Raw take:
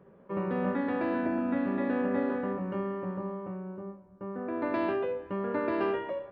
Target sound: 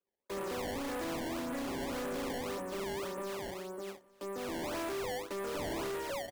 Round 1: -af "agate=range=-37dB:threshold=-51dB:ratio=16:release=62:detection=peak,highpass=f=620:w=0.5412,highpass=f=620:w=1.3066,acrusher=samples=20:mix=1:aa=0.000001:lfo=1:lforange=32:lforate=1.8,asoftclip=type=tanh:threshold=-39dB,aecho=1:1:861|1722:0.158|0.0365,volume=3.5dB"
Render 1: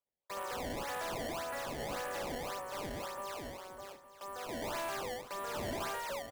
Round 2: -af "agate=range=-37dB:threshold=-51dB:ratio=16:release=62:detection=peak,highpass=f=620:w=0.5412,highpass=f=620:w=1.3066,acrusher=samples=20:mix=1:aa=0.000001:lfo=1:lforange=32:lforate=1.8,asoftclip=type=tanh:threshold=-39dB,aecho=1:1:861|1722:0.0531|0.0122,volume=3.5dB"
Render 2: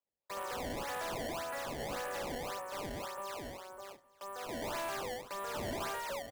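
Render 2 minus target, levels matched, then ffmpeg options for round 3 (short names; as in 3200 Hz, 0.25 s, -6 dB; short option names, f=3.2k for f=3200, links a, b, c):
250 Hz band -5.5 dB
-af "agate=range=-37dB:threshold=-51dB:ratio=16:release=62:detection=peak,highpass=f=280:w=0.5412,highpass=f=280:w=1.3066,acrusher=samples=20:mix=1:aa=0.000001:lfo=1:lforange=32:lforate=1.8,asoftclip=type=tanh:threshold=-39dB,aecho=1:1:861|1722:0.0531|0.0122,volume=3.5dB"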